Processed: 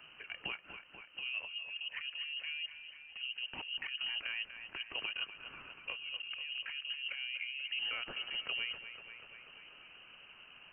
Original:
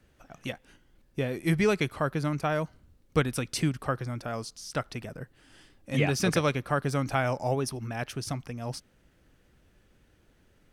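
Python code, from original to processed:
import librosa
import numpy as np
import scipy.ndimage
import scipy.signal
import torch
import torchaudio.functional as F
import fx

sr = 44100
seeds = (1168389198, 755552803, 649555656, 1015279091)

y = fx.block_float(x, sr, bits=5)
y = scipy.signal.sosfilt(scipy.signal.butter(2, 100.0, 'highpass', fs=sr, output='sos'), y)
y = fx.env_lowpass_down(y, sr, base_hz=510.0, full_db=-25.0)
y = fx.over_compress(y, sr, threshold_db=-37.0, ratio=-1.0)
y = fx.echo_thinned(y, sr, ms=243, feedback_pct=60, hz=190.0, wet_db=-11.0)
y = fx.freq_invert(y, sr, carrier_hz=3000)
y = fx.band_squash(y, sr, depth_pct=40)
y = y * librosa.db_to_amplitude(-4.5)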